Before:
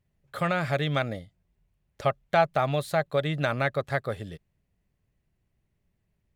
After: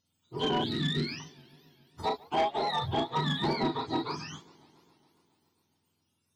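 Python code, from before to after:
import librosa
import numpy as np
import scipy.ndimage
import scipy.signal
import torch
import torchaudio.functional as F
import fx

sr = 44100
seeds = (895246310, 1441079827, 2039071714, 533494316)

y = fx.octave_mirror(x, sr, pivot_hz=730.0)
y = fx.bass_treble(y, sr, bass_db=-15, treble_db=-2, at=(2.02, 2.82))
y = fx.room_early_taps(y, sr, ms=(34, 46), db=(-5.0, -11.5))
y = 10.0 ** (-22.0 / 20.0) * np.tanh(y / 10.0 ** (-22.0 / 20.0))
y = fx.cheby1_bandstop(y, sr, low_hz=350.0, high_hz=1800.0, order=2, at=(0.64, 1.2))
y = fx.air_absorb(y, sr, metres=63.0, at=(3.55, 4.0))
y = fx.echo_warbled(y, sr, ms=138, feedback_pct=75, rate_hz=2.8, cents=205, wet_db=-24)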